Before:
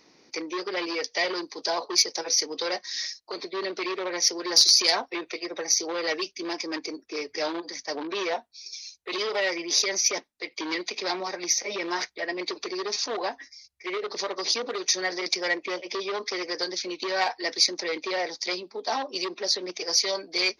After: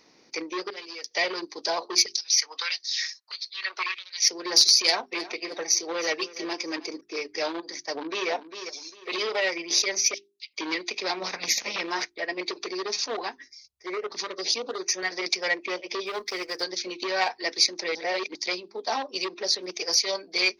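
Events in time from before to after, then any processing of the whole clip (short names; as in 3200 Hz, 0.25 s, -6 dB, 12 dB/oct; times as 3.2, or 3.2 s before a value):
0.7–1.11 pre-emphasis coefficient 0.8
2.06–4.28 LFO high-pass sine 1.6 Hz 950–4700 Hz
4.81–7.01 feedback echo 0.315 s, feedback 35%, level -15 dB
7.71–8.29 echo throw 0.4 s, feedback 35%, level -9 dB
10.14–10.54 steep high-pass 2600 Hz 48 dB/oct
11.22–11.8 spectral limiter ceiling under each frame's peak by 19 dB
13.21–15.11 LFO notch saw up 1.1 Hz 460–5000 Hz
16.06–16.63 G.711 law mismatch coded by A
17.95–18.35 reverse
19.53–19.95 bell 12000 Hz +14.5 dB
whole clip: notches 50/100/150/200/250/300/350/400 Hz; dynamic EQ 2500 Hz, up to +4 dB, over -44 dBFS, Q 4.3; transient shaper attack 0 dB, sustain -4 dB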